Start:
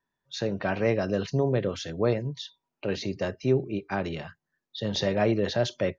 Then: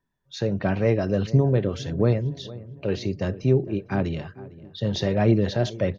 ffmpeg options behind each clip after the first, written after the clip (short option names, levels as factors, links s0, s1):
-filter_complex "[0:a]lowshelf=f=300:g=10.5,asplit=2[s0][s1];[s1]adelay=455,lowpass=f=1300:p=1,volume=0.133,asplit=2[s2][s3];[s3]adelay=455,lowpass=f=1300:p=1,volume=0.54,asplit=2[s4][s5];[s5]adelay=455,lowpass=f=1300:p=1,volume=0.54,asplit=2[s6][s7];[s7]adelay=455,lowpass=f=1300:p=1,volume=0.54,asplit=2[s8][s9];[s9]adelay=455,lowpass=f=1300:p=1,volume=0.54[s10];[s0][s2][s4][s6][s8][s10]amix=inputs=6:normalize=0,aphaser=in_gain=1:out_gain=1:delay=3.2:decay=0.26:speed=1.5:type=triangular,volume=0.841"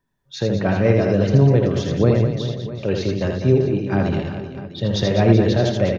-af "aecho=1:1:80|200|380|650|1055:0.631|0.398|0.251|0.158|0.1,volume=1.5"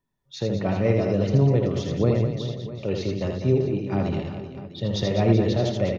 -af "bandreject=f=1600:w=5.6,volume=0.562"